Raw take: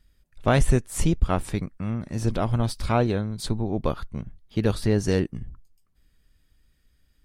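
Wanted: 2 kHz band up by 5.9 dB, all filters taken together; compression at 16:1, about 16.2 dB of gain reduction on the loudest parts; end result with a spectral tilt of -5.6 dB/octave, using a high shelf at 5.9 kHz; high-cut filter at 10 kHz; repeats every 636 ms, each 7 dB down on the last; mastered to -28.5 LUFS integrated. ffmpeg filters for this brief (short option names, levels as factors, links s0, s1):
-af "lowpass=10000,equalizer=f=2000:t=o:g=8,highshelf=f=5900:g=-3.5,acompressor=threshold=0.0316:ratio=16,aecho=1:1:636|1272|1908|2544|3180:0.447|0.201|0.0905|0.0407|0.0183,volume=2.66"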